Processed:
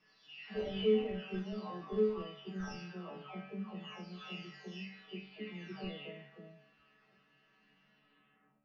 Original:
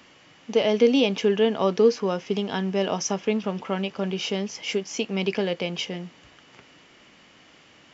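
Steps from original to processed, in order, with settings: delay that grows with frequency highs early, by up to 777 ms; chord resonator D#3 sus4, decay 0.49 s; in parallel at -11 dB: Schmitt trigger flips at -36.5 dBFS; on the sum: distance through air 190 m; speed mistake 48 kHz file played as 44.1 kHz; on a send at -4 dB: high-pass 790 Hz 12 dB/octave + reverberation RT60 0.95 s, pre-delay 7 ms; on the sum: trim +4 dB

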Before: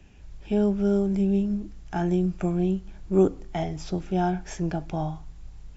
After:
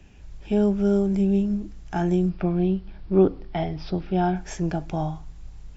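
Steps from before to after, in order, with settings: 2.29–4.36 s: steep low-pass 5.2 kHz 72 dB/octave; trim +2 dB

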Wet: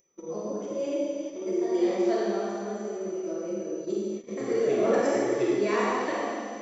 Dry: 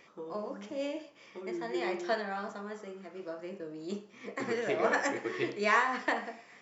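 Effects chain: treble shelf 5.6 kHz -8 dB; Schroeder reverb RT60 2 s, combs from 33 ms, DRR -5 dB; whistle 6 kHz -53 dBFS; upward compressor, threshold -32 dBFS; flange 1.3 Hz, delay 1.8 ms, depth 2.4 ms, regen -53%; gate -41 dBFS, range -30 dB; peaking EQ 1.6 kHz -13 dB 2.5 oct; small resonant body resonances 380/560/1300 Hz, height 6 dB; trim +7.5 dB

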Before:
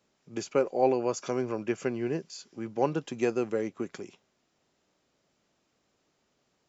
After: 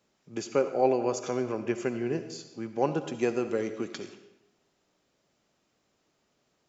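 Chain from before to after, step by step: 3.49–4.04 s: peaking EQ 3.9 kHz +4.5 dB -> +12 dB 1.3 oct; algorithmic reverb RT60 0.96 s, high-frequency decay 0.85×, pre-delay 30 ms, DRR 9.5 dB

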